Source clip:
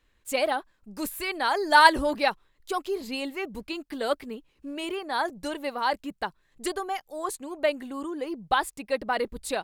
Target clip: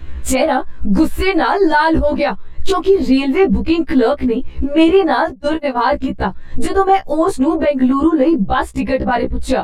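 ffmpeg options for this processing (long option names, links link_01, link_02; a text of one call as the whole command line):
ffmpeg -i in.wav -filter_complex "[0:a]asplit=3[link_01][link_02][link_03];[link_01]afade=type=out:start_time=5.24:duration=0.02[link_04];[link_02]agate=range=-29dB:threshold=-31dB:ratio=16:detection=peak,afade=type=in:start_time=5.24:duration=0.02,afade=type=out:start_time=5.9:duration=0.02[link_05];[link_03]afade=type=in:start_time=5.9:duration=0.02[link_06];[link_04][link_05][link_06]amix=inputs=3:normalize=0,aemphasis=mode=reproduction:type=riaa,acompressor=threshold=-39dB:ratio=5,alimiter=level_in=33.5dB:limit=-1dB:release=50:level=0:latency=1,afftfilt=real='re*1.73*eq(mod(b,3),0)':imag='im*1.73*eq(mod(b,3),0)':win_size=2048:overlap=0.75,volume=-2.5dB" out.wav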